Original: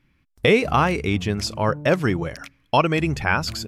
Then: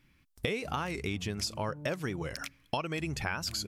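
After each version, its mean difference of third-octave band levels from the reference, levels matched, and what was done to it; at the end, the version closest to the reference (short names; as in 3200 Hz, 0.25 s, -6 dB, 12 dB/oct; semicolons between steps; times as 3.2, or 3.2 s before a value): 4.5 dB: high shelf 3700 Hz +9 dB; compressor 6:1, threshold -28 dBFS, peak gain reduction 16 dB; record warp 45 rpm, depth 100 cents; gain -3 dB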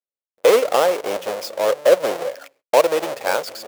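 12.0 dB: half-waves squared off; gate -48 dBFS, range -38 dB; resonant high-pass 530 Hz, resonance Q 4.9; gain -7 dB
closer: first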